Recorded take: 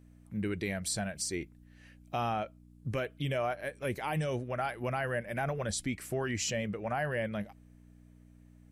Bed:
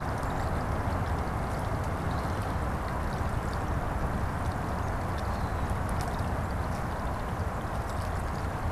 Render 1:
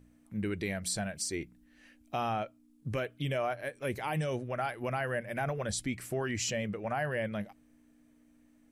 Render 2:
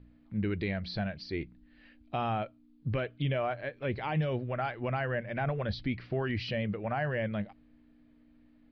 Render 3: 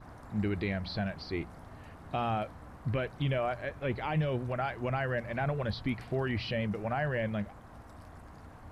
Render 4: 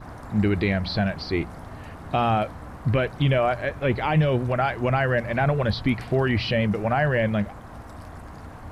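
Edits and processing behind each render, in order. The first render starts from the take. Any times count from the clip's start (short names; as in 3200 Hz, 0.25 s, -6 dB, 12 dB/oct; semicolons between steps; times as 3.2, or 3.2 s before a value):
de-hum 60 Hz, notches 3
steep low-pass 4700 Hz 72 dB/oct; low shelf 150 Hz +7.5 dB
add bed -18.5 dB
gain +10 dB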